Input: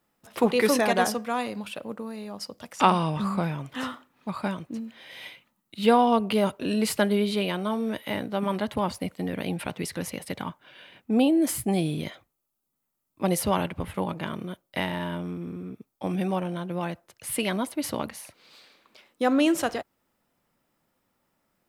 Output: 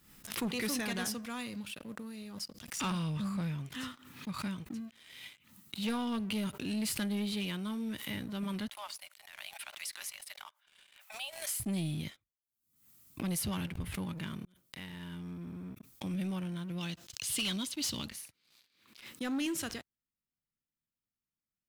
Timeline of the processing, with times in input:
0:08.68–0:11.60: Chebyshev high-pass filter 570 Hz, order 10
0:14.45–0:15.70: fade in, from −22.5 dB
0:16.78–0:18.10: flat-topped bell 4,600 Hz +11 dB
whole clip: guitar amp tone stack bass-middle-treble 6-0-2; leveller curve on the samples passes 3; background raised ahead of every attack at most 81 dB per second

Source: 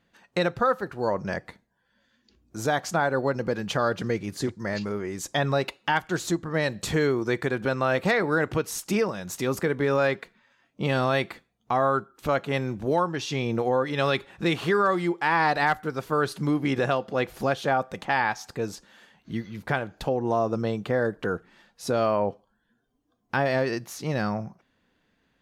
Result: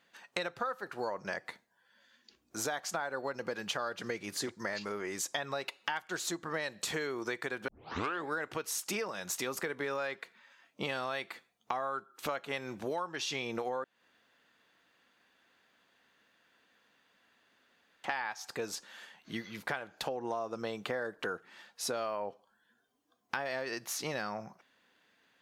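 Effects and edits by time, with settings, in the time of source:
0:07.68: tape start 0.62 s
0:13.84–0:18.04: fill with room tone
whole clip: high-pass filter 870 Hz 6 dB per octave; downward compressor 6 to 1, threshold −37 dBFS; level +4 dB

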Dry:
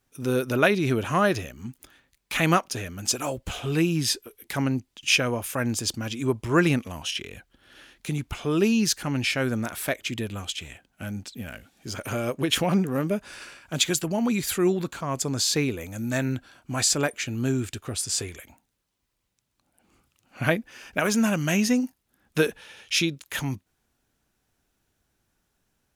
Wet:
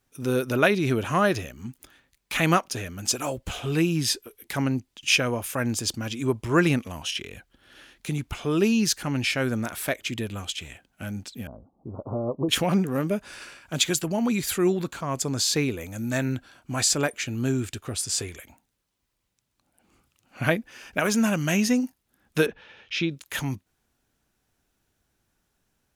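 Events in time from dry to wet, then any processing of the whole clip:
0:11.47–0:12.49: Butterworth low-pass 1,100 Hz 72 dB per octave
0:22.46–0:23.11: high-frequency loss of the air 230 metres

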